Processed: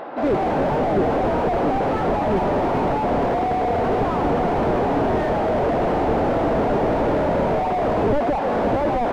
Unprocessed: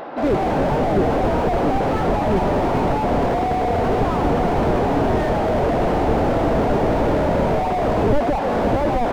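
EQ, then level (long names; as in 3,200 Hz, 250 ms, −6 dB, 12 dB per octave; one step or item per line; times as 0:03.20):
low-shelf EQ 150 Hz −7 dB
high-shelf EQ 4,300 Hz −8.5 dB
0.0 dB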